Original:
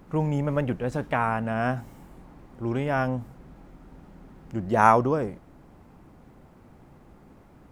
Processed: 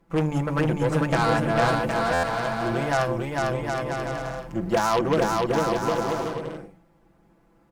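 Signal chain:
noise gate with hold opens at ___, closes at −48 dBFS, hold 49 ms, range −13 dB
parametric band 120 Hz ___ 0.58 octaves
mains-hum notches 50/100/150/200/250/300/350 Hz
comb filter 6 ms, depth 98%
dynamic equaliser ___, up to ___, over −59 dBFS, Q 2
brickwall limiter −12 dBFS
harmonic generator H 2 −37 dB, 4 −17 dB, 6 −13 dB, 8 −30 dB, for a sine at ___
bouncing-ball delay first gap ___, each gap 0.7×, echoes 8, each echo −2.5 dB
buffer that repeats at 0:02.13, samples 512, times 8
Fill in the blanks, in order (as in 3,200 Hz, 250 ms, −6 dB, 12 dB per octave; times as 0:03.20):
−39 dBFS, −5 dB, 9,400 Hz, +5 dB, −12 dBFS, 450 ms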